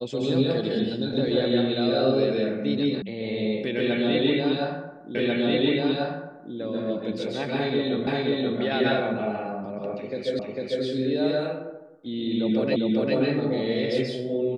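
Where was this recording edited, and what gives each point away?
3.02 sound cut off
5.15 repeat of the last 1.39 s
8.07 repeat of the last 0.53 s
10.39 repeat of the last 0.45 s
12.76 repeat of the last 0.4 s

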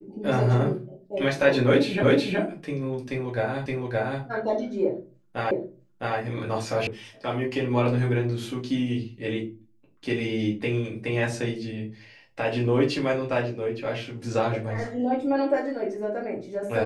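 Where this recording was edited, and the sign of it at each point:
2.03 repeat of the last 0.37 s
3.66 repeat of the last 0.57 s
5.51 repeat of the last 0.66 s
6.87 sound cut off

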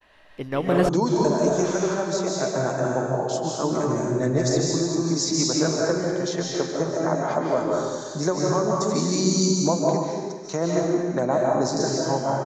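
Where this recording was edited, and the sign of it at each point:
0.89 sound cut off

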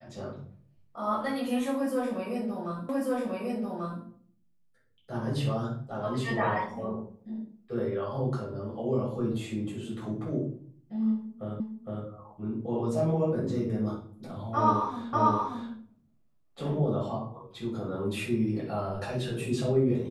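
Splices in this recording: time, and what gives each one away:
2.89 repeat of the last 1.14 s
11.6 repeat of the last 0.46 s
15.13 repeat of the last 0.58 s

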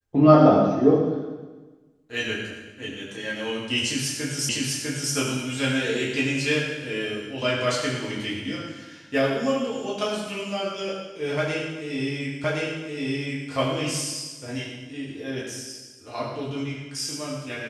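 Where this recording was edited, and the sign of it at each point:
4.49 repeat of the last 0.65 s
12.44 repeat of the last 1.07 s

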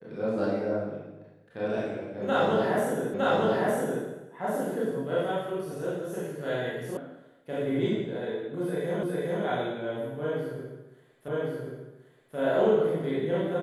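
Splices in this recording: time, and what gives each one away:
3.14 repeat of the last 0.91 s
6.97 sound cut off
9.03 repeat of the last 0.41 s
11.28 repeat of the last 1.08 s

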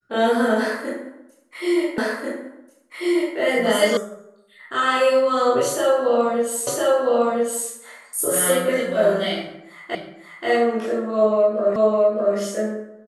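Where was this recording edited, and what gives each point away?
1.98 repeat of the last 1.39 s
3.97 sound cut off
6.67 repeat of the last 1.01 s
9.95 repeat of the last 0.53 s
11.76 repeat of the last 0.61 s

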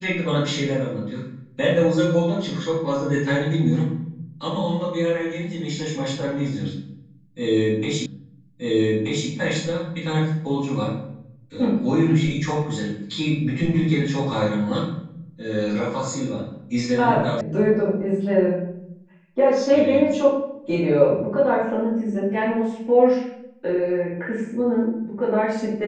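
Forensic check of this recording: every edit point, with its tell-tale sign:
8.06 repeat of the last 1.23 s
17.41 sound cut off

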